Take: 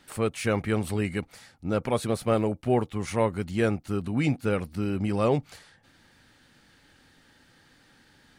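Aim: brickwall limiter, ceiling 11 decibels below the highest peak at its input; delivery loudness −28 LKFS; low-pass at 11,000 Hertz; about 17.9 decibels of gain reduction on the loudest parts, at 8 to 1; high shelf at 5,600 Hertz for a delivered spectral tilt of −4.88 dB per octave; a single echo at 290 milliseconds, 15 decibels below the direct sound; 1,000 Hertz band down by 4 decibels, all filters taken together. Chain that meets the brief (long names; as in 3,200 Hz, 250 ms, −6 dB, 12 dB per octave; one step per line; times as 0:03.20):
low-pass filter 11,000 Hz
parametric band 1,000 Hz −5.5 dB
high-shelf EQ 5,600 Hz +3.5 dB
downward compressor 8 to 1, threshold −39 dBFS
brickwall limiter −39 dBFS
single-tap delay 290 ms −15 dB
level +22.5 dB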